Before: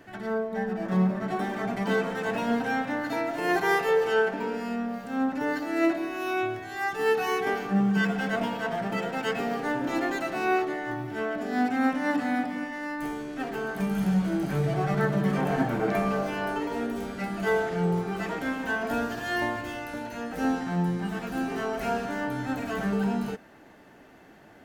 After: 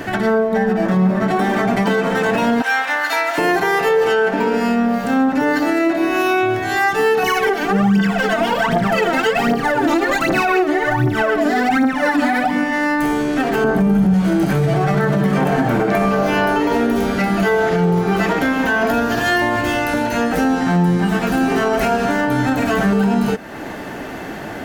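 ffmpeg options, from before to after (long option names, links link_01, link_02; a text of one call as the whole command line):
ffmpeg -i in.wav -filter_complex "[0:a]asettb=1/sr,asplit=3[link_01][link_02][link_03];[link_01]atrim=end=2.624[link_04];[link_02]atrim=start=2.62:end=3.38,asetpts=PTS-STARTPTS,afade=type=in:duration=0.004:curve=qsin,afade=type=out:start_time=0.756:duration=0.004:curve=qsin,highpass=1100[link_05];[link_03]atrim=start=3.376[link_06];[link_04][link_05]acrossfade=duration=0.004:curve1=hsin:curve2=qsin[link_07];[link_07][link_06]acrossfade=duration=0.004:curve1=qsin:curve2=hsin,asettb=1/sr,asplit=3[link_08][link_09][link_10];[link_08]atrim=end=7.234[link_11];[link_09]atrim=start=7.23:end=12.51,asetpts=PTS-STARTPTS,afade=type=in:duration=0.004:curve=qsin,afade=type=out:start_time=5.276:duration=0.004:curve=qsin,aphaser=in_gain=1:out_gain=1:delay=3.4:decay=0.74:speed=1.3:type=triangular[link_12];[link_10]atrim=start=12.506[link_13];[link_11][link_12]acrossfade=duration=0.004:curve1=hsin:curve2=qsin[link_14];[link_14][link_13]acrossfade=duration=0.004:curve1=qsin:curve2=hsin,asettb=1/sr,asplit=3[link_15][link_16][link_17];[link_15]atrim=end=13.644[link_18];[link_16]atrim=start=13.64:end=14.14,asetpts=PTS-STARTPTS,afade=type=in:duration=0.004:curve=qsin,afade=type=out:start_time=0.496:duration=0.004:curve=qsin,tiltshelf=frequency=1100:gain=7[link_19];[link_17]atrim=start=14.136[link_20];[link_18][link_19]acrossfade=duration=0.004:curve1=hsin:curve2=qsin[link_21];[link_21][link_20]acrossfade=duration=0.004:curve1=qsin:curve2=hsin,asettb=1/sr,asplit=3[link_22][link_23][link_24];[link_22]atrim=end=16.114[link_25];[link_23]atrim=start=16.11:end=19.21,asetpts=PTS-STARTPTS,afade=type=in:duration=0.004:curve=qsin,afade=type=out:start_time=3.096:duration=0.004:curve=qsin,equalizer=frequency=8200:width=6.8:gain=-8.5[link_26];[link_24]atrim=start=19.206[link_27];[link_25][link_26]acrossfade=duration=0.004:curve1=hsin:curve2=qsin[link_28];[link_28][link_27]acrossfade=duration=0.004:curve1=qsin:curve2=hsin,acompressor=threshold=-45dB:ratio=2,alimiter=level_in=31dB:limit=-1dB:release=50:level=0:latency=1,volume=-7dB" out.wav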